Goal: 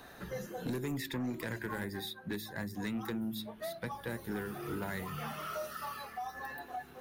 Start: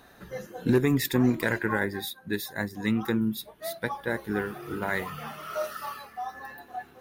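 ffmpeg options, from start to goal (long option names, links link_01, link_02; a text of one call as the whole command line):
ffmpeg -i in.wav -filter_complex "[0:a]bandreject=frequency=54:width_type=h:width=4,bandreject=frequency=108:width_type=h:width=4,bandreject=frequency=162:width_type=h:width=4,bandreject=frequency=216:width_type=h:width=4,bandreject=frequency=270:width_type=h:width=4,bandreject=frequency=324:width_type=h:width=4,bandreject=frequency=378:width_type=h:width=4,acrossover=split=250|4500[link_01][link_02][link_03];[link_01]acompressor=threshold=-40dB:ratio=4[link_04];[link_02]acompressor=threshold=-40dB:ratio=4[link_05];[link_03]acompressor=threshold=-52dB:ratio=4[link_06];[link_04][link_05][link_06]amix=inputs=3:normalize=0,asoftclip=type=tanh:threshold=-31.5dB,volume=2dB" out.wav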